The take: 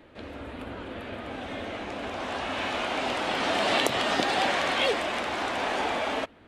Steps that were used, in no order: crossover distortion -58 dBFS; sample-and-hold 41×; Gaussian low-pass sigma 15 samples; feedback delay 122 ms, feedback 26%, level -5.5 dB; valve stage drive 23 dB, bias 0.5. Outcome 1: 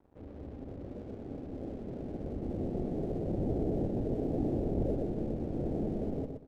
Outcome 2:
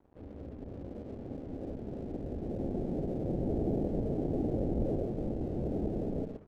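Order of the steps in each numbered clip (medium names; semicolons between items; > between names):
valve stage > sample-and-hold > Gaussian low-pass > crossover distortion > feedback delay; valve stage > feedback delay > sample-and-hold > Gaussian low-pass > crossover distortion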